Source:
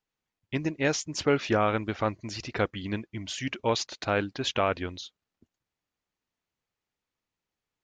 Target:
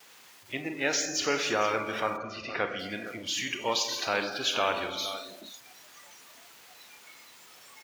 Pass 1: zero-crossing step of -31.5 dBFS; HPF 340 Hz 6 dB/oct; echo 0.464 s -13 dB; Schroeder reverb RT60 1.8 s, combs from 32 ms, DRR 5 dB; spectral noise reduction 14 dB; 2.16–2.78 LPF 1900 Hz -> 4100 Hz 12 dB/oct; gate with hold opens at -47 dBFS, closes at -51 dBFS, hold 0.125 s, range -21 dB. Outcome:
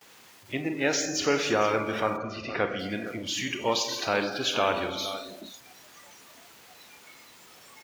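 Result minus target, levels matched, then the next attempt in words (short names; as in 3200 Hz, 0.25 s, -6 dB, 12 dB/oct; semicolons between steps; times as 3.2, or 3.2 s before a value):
250 Hz band +4.0 dB
zero-crossing step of -31.5 dBFS; HPF 830 Hz 6 dB/oct; echo 0.464 s -13 dB; Schroeder reverb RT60 1.8 s, combs from 32 ms, DRR 5 dB; spectral noise reduction 14 dB; 2.16–2.78 LPF 1900 Hz -> 4100 Hz 12 dB/oct; gate with hold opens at -47 dBFS, closes at -51 dBFS, hold 0.125 s, range -21 dB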